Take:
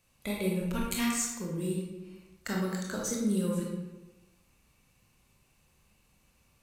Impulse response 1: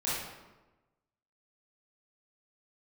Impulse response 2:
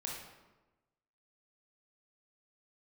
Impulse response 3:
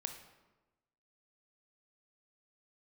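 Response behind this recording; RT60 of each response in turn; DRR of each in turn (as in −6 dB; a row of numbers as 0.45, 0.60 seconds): 2; 1.1, 1.1, 1.1 seconds; −9.5, −2.5, 5.5 decibels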